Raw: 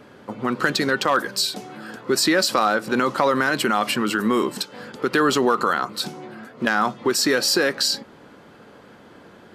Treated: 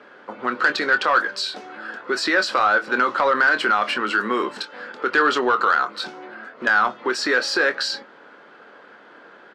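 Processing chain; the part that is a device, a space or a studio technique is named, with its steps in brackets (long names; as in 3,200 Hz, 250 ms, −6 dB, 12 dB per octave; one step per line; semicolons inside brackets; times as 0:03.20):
intercom (band-pass filter 380–4,100 Hz; parametric band 1,500 Hz +7 dB 0.57 octaves; soft clipping −8 dBFS, distortion −20 dB; double-tracking delay 24 ms −10 dB)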